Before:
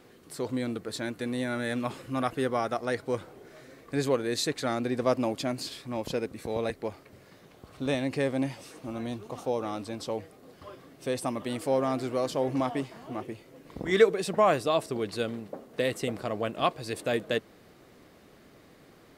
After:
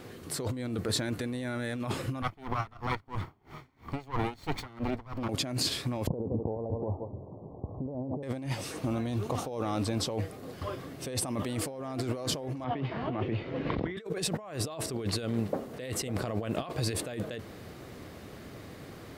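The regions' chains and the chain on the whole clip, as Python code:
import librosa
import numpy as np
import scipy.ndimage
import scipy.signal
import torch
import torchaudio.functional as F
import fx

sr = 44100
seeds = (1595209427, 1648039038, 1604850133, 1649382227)

y = fx.chain(x, sr, fx.lower_of_two(delay_ms=0.91),
    fx.peak_eq(hz=9000.0, db=-12.0, octaves=1.6),
    fx.tremolo_db(hz=3.0, depth_db=28), at=(2.22, 5.29))
y = fx.chain(y, sr, fx.steep_lowpass(hz=1000.0, slope=72),
    fx.echo_single(ms=168, db=-15.0), at=(6.07, 8.23))
y = fx.chain(y, sr, fx.lowpass(hz=3500.0, slope=24),
    fx.band_squash(depth_pct=70), at=(12.64, 13.97))
y = fx.peak_eq(y, sr, hz=92.0, db=8.5, octaves=1.2)
y = fx.over_compress(y, sr, threshold_db=-36.0, ratio=-1.0)
y = y * librosa.db_to_amplitude(2.5)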